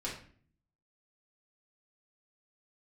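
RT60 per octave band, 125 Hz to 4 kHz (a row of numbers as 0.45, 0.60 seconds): 0.90, 0.80, 0.50, 0.45, 0.45, 0.40 seconds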